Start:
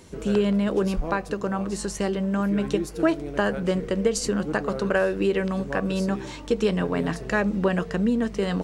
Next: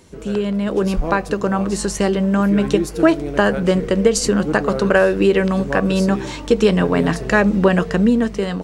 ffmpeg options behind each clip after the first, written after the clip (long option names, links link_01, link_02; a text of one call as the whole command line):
ffmpeg -i in.wav -af "dynaudnorm=framelen=540:gausssize=3:maxgain=11.5dB" out.wav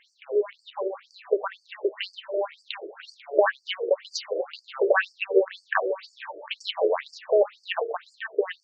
ffmpeg -i in.wav -af "highshelf=frequency=5100:width_type=q:width=1.5:gain=-13.5,afftfilt=real='re*between(b*sr/1024,460*pow(6400/460,0.5+0.5*sin(2*PI*2*pts/sr))/1.41,460*pow(6400/460,0.5+0.5*sin(2*PI*2*pts/sr))*1.41)':imag='im*between(b*sr/1024,460*pow(6400/460,0.5+0.5*sin(2*PI*2*pts/sr))/1.41,460*pow(6400/460,0.5+0.5*sin(2*PI*2*pts/sr))*1.41)':win_size=1024:overlap=0.75" out.wav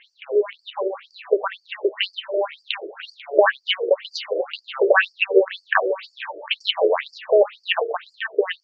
ffmpeg -i in.wav -af "lowpass=frequency=3200:width_type=q:width=1.9,volume=4.5dB" out.wav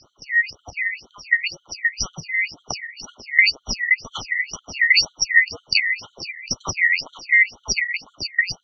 ffmpeg -i in.wav -filter_complex "[0:a]afftfilt=real='real(if(lt(b,272),68*(eq(floor(b/68),0)*2+eq(floor(b/68),1)*0+eq(floor(b/68),2)*3+eq(floor(b/68),3)*1)+mod(b,68),b),0)':imag='imag(if(lt(b,272),68*(eq(floor(b/68),0)*2+eq(floor(b/68),1)*0+eq(floor(b/68),2)*3+eq(floor(b/68),3)*1)+mod(b,68),b),0)':win_size=2048:overlap=0.75,acrossover=split=540[link_01][link_02];[link_01]asoftclip=type=tanh:threshold=-26dB[link_03];[link_03][link_02]amix=inputs=2:normalize=0" out.wav